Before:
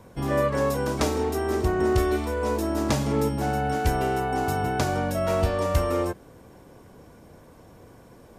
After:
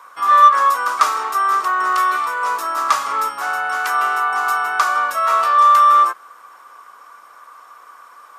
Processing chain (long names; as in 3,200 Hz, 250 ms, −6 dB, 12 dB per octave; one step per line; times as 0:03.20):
high-pass with resonance 1,200 Hz, resonance Q 11
in parallel at −4 dB: soft clipping −15 dBFS, distortion −12 dB
on the sum: level +1.5 dB